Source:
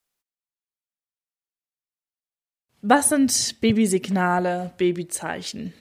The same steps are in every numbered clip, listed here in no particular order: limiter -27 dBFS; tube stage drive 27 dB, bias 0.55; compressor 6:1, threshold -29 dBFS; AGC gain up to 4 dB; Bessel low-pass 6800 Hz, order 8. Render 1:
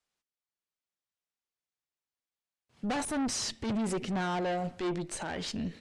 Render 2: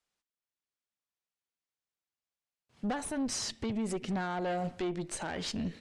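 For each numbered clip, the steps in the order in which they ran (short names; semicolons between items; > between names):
tube stage > AGC > compressor > Bessel low-pass > limiter; compressor > AGC > tube stage > Bessel low-pass > limiter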